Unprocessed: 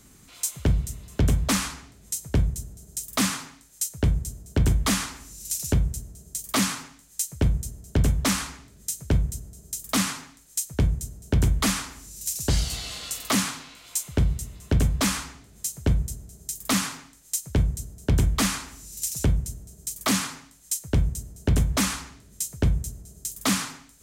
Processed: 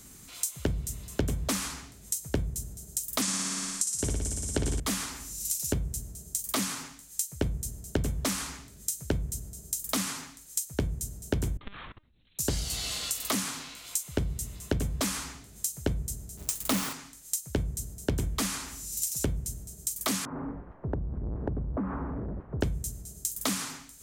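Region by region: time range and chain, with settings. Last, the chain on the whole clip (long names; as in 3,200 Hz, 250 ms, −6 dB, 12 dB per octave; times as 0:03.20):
0:03.22–0:04.80: low-pass filter 9,400 Hz 24 dB per octave + bass and treble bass −3 dB, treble +7 dB + flutter between parallel walls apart 9.9 metres, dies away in 1.3 s
0:11.57–0:12.39: high-shelf EQ 2,800 Hz −3 dB + linear-prediction vocoder at 8 kHz pitch kept + output level in coarse steps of 22 dB
0:16.37–0:16.93: each half-wave held at its own peak + notch filter 1,600 Hz, Q 25
0:20.25–0:22.61: converter with a step at zero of −29.5 dBFS + Bessel low-pass filter 820 Hz, order 6 + downward compressor 10 to 1, threshold −29 dBFS
whole clip: high-shelf EQ 5,200 Hz +7 dB; downward compressor, threshold −28 dBFS; dynamic equaliser 380 Hz, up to +5 dB, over −46 dBFS, Q 0.87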